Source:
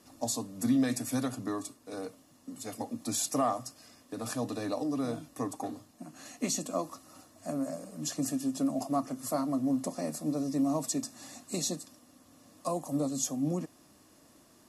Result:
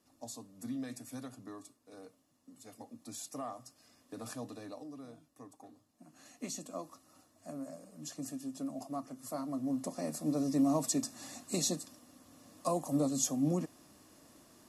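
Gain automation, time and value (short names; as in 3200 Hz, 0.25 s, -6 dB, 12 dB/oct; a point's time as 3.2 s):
3.51 s -13 dB
4.15 s -6 dB
5.14 s -18 dB
5.75 s -18 dB
6.17 s -9.5 dB
9.17 s -9.5 dB
10.45 s 0 dB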